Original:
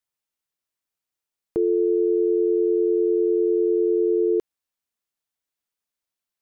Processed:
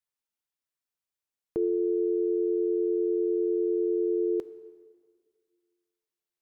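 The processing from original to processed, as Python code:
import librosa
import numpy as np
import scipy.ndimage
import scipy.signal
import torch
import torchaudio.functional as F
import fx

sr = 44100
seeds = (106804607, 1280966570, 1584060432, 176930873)

y = fx.rev_plate(x, sr, seeds[0], rt60_s=1.8, hf_ratio=0.9, predelay_ms=0, drr_db=13.0)
y = y * 10.0 ** (-5.5 / 20.0)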